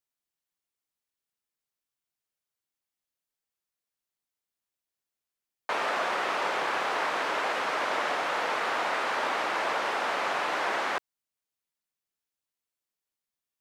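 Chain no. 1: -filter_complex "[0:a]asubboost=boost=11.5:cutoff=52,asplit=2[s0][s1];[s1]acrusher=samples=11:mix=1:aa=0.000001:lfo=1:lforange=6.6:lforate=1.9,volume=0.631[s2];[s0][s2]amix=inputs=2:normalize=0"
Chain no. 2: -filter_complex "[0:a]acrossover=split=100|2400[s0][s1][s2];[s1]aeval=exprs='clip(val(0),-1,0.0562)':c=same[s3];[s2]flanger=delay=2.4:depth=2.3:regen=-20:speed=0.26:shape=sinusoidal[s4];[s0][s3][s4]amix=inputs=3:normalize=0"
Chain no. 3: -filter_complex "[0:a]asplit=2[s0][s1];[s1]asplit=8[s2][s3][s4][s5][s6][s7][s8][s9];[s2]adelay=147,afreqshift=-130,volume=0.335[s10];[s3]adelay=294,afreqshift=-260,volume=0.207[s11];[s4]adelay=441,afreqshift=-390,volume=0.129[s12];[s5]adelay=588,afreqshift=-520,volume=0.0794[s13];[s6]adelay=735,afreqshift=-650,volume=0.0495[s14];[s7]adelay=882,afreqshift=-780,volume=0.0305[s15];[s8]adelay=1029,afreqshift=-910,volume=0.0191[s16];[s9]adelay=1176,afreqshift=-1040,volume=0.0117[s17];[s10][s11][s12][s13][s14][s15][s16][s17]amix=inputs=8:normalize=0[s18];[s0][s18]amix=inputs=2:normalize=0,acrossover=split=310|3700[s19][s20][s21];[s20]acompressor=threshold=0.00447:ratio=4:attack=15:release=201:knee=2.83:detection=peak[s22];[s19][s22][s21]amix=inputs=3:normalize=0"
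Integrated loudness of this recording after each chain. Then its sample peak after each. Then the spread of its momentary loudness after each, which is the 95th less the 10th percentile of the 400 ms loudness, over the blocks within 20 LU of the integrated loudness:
-26.0 LUFS, -29.5 LUFS, -39.5 LUFS; -12.5 dBFS, -17.5 dBFS, -23.5 dBFS; 1 LU, 1 LU, 7 LU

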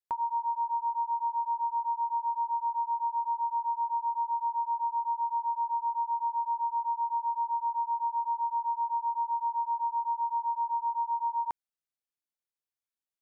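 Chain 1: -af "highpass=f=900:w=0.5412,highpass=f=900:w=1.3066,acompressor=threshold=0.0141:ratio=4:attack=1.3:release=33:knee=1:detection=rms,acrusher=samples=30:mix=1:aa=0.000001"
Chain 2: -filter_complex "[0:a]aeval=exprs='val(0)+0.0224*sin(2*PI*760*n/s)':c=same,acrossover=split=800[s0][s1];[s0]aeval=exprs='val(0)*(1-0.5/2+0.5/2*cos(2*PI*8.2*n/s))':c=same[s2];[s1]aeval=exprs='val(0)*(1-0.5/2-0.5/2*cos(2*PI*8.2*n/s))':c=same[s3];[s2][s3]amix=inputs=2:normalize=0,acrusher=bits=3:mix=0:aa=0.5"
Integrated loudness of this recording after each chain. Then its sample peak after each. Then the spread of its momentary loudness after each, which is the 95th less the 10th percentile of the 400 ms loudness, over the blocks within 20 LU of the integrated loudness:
-38.5 LUFS, -44.0 LUFS; -33.0 dBFS, -25.5 dBFS; 0 LU, 5 LU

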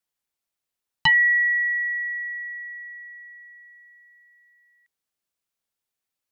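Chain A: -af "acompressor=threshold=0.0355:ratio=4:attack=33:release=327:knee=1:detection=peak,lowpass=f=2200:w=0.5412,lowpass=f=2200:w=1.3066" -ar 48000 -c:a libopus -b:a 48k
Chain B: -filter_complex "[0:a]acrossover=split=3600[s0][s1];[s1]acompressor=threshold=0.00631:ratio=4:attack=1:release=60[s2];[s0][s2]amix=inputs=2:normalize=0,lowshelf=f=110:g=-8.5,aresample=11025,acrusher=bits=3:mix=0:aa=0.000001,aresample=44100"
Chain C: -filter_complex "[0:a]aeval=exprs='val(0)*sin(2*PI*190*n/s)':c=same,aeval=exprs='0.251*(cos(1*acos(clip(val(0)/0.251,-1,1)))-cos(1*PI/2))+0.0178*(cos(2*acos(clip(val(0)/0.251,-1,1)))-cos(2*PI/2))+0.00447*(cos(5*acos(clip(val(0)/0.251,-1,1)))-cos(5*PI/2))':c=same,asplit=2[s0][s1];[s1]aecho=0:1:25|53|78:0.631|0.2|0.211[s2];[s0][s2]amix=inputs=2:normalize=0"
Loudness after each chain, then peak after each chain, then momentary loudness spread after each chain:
-30.0 LUFS, -18.5 LUFS, -22.5 LUFS; -11.0 dBFS, -9.5 dBFS, -10.5 dBFS; 18 LU, 8 LU, 21 LU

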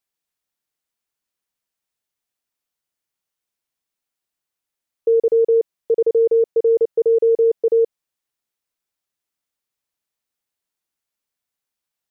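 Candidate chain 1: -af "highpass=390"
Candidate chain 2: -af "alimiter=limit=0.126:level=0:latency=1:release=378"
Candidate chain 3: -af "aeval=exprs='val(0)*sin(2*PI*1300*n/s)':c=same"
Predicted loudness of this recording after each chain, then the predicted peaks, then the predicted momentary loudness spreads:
-19.5 LUFS, -25.0 LUFS, -19.0 LUFS; -12.5 dBFS, -18.0 dBFS, -11.0 dBFS; 4 LU, 4 LU, 4 LU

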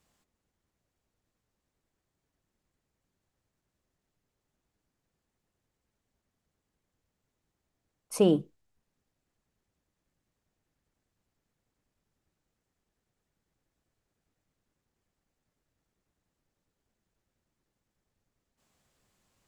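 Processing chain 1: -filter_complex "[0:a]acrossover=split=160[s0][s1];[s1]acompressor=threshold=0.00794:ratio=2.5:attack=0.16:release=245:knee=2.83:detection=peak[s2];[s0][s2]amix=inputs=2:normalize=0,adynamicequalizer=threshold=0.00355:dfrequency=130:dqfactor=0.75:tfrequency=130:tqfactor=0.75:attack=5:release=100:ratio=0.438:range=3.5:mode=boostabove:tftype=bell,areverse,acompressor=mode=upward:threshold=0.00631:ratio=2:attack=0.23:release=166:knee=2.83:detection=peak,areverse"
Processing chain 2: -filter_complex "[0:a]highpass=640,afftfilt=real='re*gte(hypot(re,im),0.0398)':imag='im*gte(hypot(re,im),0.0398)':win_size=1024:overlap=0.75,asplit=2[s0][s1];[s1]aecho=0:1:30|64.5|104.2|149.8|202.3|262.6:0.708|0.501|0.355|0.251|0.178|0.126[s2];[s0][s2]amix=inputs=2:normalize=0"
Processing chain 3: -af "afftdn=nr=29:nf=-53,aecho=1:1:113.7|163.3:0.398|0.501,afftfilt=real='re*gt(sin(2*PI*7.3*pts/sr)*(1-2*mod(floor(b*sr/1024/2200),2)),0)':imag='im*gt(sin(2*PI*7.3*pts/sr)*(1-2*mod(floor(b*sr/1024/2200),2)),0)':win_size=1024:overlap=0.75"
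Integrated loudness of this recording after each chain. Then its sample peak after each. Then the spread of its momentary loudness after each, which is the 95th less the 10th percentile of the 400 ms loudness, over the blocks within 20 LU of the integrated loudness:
-35.0 LUFS, -33.5 LUFS, -28.0 LUFS; -20.0 dBFS, -17.5 dBFS, -11.5 dBFS; 17 LU, 17 LU, 17 LU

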